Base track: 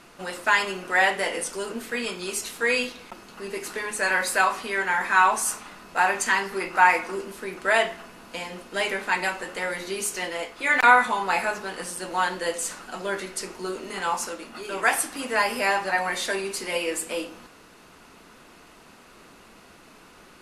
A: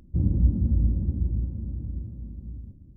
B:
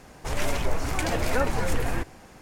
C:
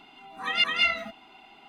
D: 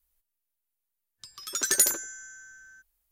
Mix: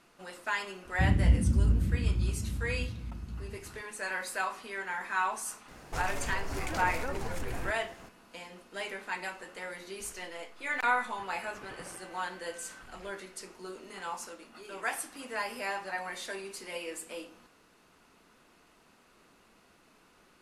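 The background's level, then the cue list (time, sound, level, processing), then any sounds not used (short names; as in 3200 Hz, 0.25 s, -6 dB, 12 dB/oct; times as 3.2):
base track -12 dB
0.85 add A -2.5 dB
5.68 add B -3.5 dB + compressor 5:1, threshold -27 dBFS
10 add D -12.5 dB + delta modulation 16 kbps, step -34 dBFS
not used: C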